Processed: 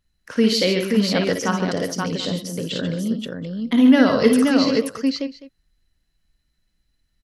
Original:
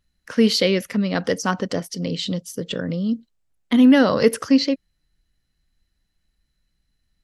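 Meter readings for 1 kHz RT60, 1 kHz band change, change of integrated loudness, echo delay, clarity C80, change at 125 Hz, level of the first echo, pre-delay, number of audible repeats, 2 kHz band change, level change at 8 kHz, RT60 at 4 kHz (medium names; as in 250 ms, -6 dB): no reverb, +1.0 dB, +0.5 dB, 55 ms, no reverb, +1.0 dB, -6.0 dB, no reverb, 4, +1.5 dB, +1.5 dB, no reverb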